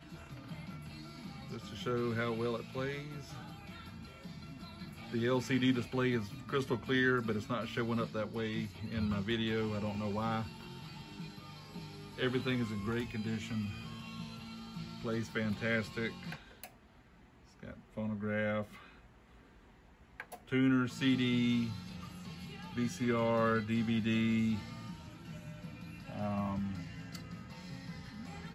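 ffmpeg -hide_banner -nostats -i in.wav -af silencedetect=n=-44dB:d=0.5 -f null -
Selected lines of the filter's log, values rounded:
silence_start: 16.66
silence_end: 17.63 | silence_duration: 0.97
silence_start: 18.82
silence_end: 20.20 | silence_duration: 1.38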